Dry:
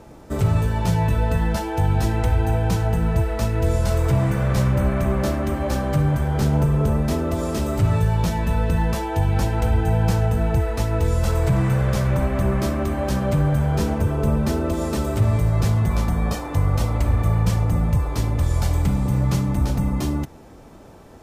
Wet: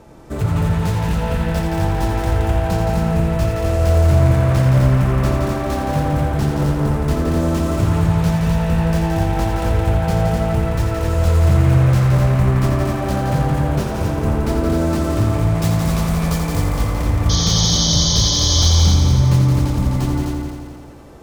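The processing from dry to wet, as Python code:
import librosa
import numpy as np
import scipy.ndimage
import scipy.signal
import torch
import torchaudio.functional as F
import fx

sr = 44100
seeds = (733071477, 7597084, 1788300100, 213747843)

y = fx.self_delay(x, sr, depth_ms=0.26)
y = fx.high_shelf(y, sr, hz=3500.0, db=8.0, at=(15.54, 16.74))
y = fx.spec_paint(y, sr, seeds[0], shape='noise', start_s=17.29, length_s=1.4, low_hz=3000.0, high_hz=6700.0, level_db=-22.0)
y = fx.echo_heads(y, sr, ms=85, heads='all three', feedback_pct=51, wet_db=-6.5)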